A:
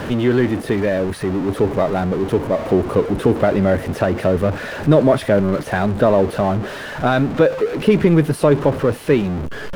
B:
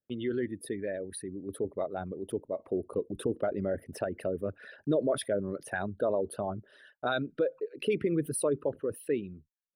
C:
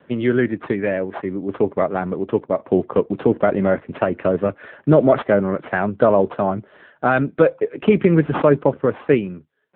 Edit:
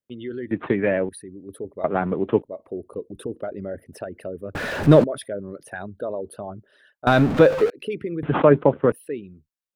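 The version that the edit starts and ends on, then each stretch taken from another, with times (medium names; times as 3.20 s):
B
0.51–1.09 s: from C
1.84–2.42 s: from C
4.55–5.04 s: from A
7.07–7.70 s: from A
8.23–8.92 s: from C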